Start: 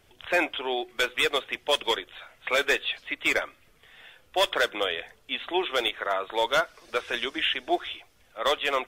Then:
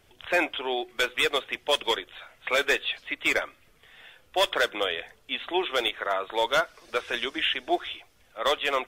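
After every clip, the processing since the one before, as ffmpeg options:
-af anull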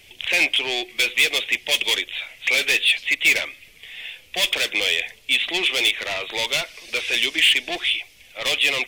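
-af "asoftclip=type=tanh:threshold=-29dB,highshelf=f=1.8k:t=q:w=3:g=8.5,volume=4.5dB"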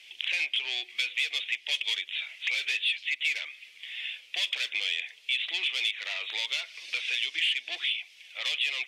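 -af "acompressor=threshold=-29dB:ratio=2.5,bandpass=f=3.2k:t=q:w=1:csg=0"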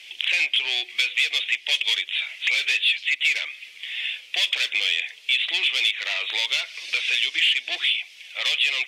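-filter_complex "[0:a]bandreject=f=50:t=h:w=6,bandreject=f=100:t=h:w=6,asplit=2[a][b];[b]asoftclip=type=tanh:threshold=-26.5dB,volume=-9.5dB[c];[a][c]amix=inputs=2:normalize=0,volume=5.5dB"

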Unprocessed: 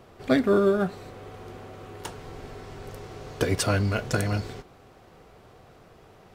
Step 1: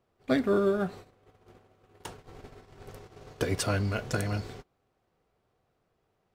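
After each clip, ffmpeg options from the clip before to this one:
-af "agate=range=-18dB:threshold=-39dB:ratio=16:detection=peak,volume=-4.5dB"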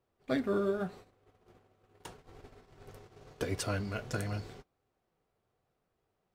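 -af "flanger=delay=2:depth=7.6:regen=-64:speed=0.83:shape=triangular,volume=-1.5dB"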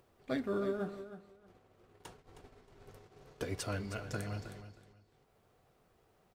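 -af "aecho=1:1:314|628:0.266|0.0479,acompressor=mode=upward:threshold=-52dB:ratio=2.5,volume=-4dB"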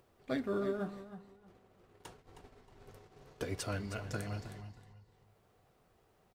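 -filter_complex "[0:a]asplit=2[a][b];[b]adelay=315,lowpass=f=2k:p=1,volume=-14.5dB,asplit=2[c][d];[d]adelay=315,lowpass=f=2k:p=1,volume=0.33,asplit=2[e][f];[f]adelay=315,lowpass=f=2k:p=1,volume=0.33[g];[a][c][e][g]amix=inputs=4:normalize=0"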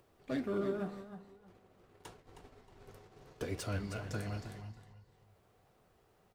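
-filter_complex "[0:a]acrossover=split=450[a][b];[b]asoftclip=type=tanh:threshold=-37.5dB[c];[a][c]amix=inputs=2:normalize=0,flanger=delay=8.8:depth=9.3:regen=78:speed=1.9:shape=sinusoidal,volume=5dB"

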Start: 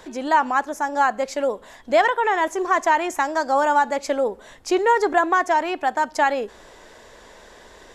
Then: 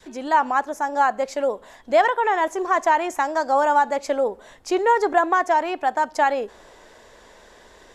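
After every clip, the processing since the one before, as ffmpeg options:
-af "adynamicequalizer=threshold=0.0501:dfrequency=700:dqfactor=0.86:tfrequency=700:tqfactor=0.86:attack=5:release=100:ratio=0.375:range=2:mode=boostabove:tftype=bell,volume=-3dB"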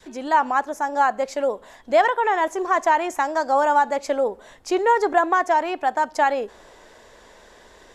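-af anull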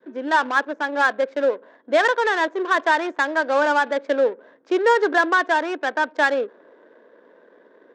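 -af "adynamicsmooth=sensitivity=3.5:basefreq=690,highpass=f=230:w=0.5412,highpass=f=230:w=1.3066,equalizer=f=290:t=q:w=4:g=4,equalizer=f=500:t=q:w=4:g=5,equalizer=f=780:t=q:w=4:g=-8,equalizer=f=1.6k:t=q:w=4:g=9,equalizer=f=3.6k:t=q:w=4:g=5,lowpass=f=7.6k:w=0.5412,lowpass=f=7.6k:w=1.3066"

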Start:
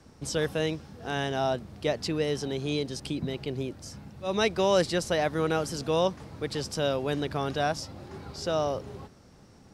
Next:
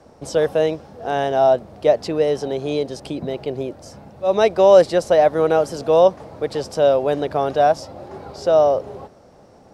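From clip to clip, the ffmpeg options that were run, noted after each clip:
-af "equalizer=f=620:t=o:w=1.5:g=15"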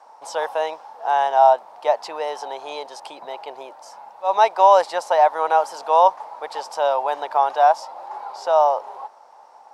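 -af "highpass=f=900:t=q:w=6.7,volume=-3dB"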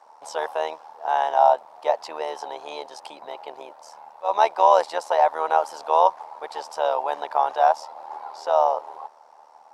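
-af "tremolo=f=77:d=0.71"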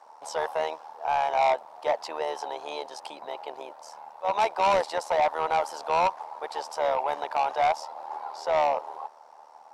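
-af "asoftclip=type=tanh:threshold=-18dB"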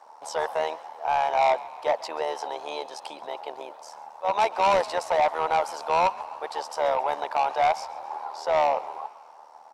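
-filter_complex "[0:a]asplit=6[a][b][c][d][e][f];[b]adelay=136,afreqshift=52,volume=-20dB[g];[c]adelay=272,afreqshift=104,volume=-24.6dB[h];[d]adelay=408,afreqshift=156,volume=-29.2dB[i];[e]adelay=544,afreqshift=208,volume=-33.7dB[j];[f]adelay=680,afreqshift=260,volume=-38.3dB[k];[a][g][h][i][j][k]amix=inputs=6:normalize=0,volume=1.5dB"

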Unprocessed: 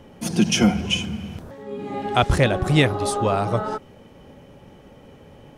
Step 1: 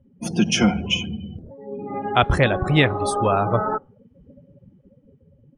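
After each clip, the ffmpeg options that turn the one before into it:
-af "afftdn=nr=33:nf=-34,equalizer=f=1.5k:w=0.79:g=4,dynaudnorm=f=330:g=7:m=11.5dB,volume=-1dB"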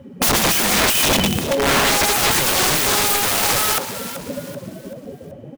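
-filter_complex "[0:a]asplit=2[a][b];[b]highpass=f=720:p=1,volume=34dB,asoftclip=type=tanh:threshold=-1.5dB[c];[a][c]amix=inputs=2:normalize=0,lowpass=f=5.6k:p=1,volume=-6dB,aeval=exprs='(mod(3.98*val(0)+1,2)-1)/3.98':c=same,asplit=5[d][e][f][g][h];[e]adelay=383,afreqshift=77,volume=-12dB[i];[f]adelay=766,afreqshift=154,volume=-20.4dB[j];[g]adelay=1149,afreqshift=231,volume=-28.8dB[k];[h]adelay=1532,afreqshift=308,volume=-37.2dB[l];[d][i][j][k][l]amix=inputs=5:normalize=0"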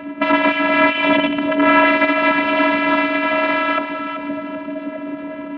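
-af "aeval=exprs='val(0)+0.5*0.0422*sgn(val(0))':c=same,afftfilt=real='hypot(re,im)*cos(PI*b)':imag='0':win_size=512:overlap=0.75,highpass=f=160:t=q:w=0.5412,highpass=f=160:t=q:w=1.307,lowpass=f=2.7k:t=q:w=0.5176,lowpass=f=2.7k:t=q:w=0.7071,lowpass=f=2.7k:t=q:w=1.932,afreqshift=-57,volume=7.5dB"

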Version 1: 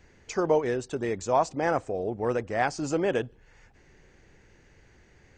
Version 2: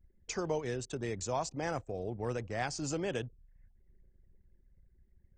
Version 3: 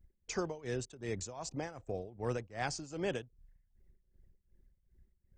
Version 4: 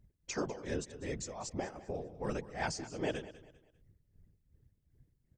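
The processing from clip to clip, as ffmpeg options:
-filter_complex "[0:a]anlmdn=0.0158,acrossover=split=150|3000[a][b][c];[b]acompressor=threshold=-52dB:ratio=1.5[d];[a][d][c]amix=inputs=3:normalize=0"
-af "tremolo=f=2.6:d=0.86,volume=1dB"
-af "afftfilt=real='hypot(re,im)*cos(2*PI*random(0))':imag='hypot(re,im)*sin(2*PI*random(1))':win_size=512:overlap=0.75,aecho=1:1:198|396|594:0.158|0.0507|0.0162,volume=6dB"

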